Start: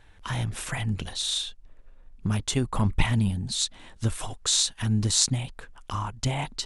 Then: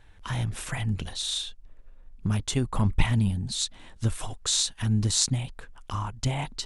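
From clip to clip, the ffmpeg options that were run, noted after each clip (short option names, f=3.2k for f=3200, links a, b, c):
-af "lowshelf=f=170:g=3.5,volume=-2dB"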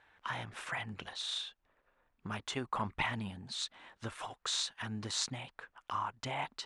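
-af "bandpass=f=1.3k:t=q:w=0.81:csg=0"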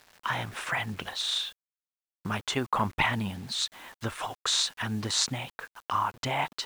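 -af "acrusher=bits=9:mix=0:aa=0.000001,volume=8.5dB"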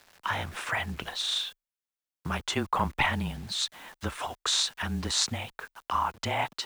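-af "afreqshift=-25"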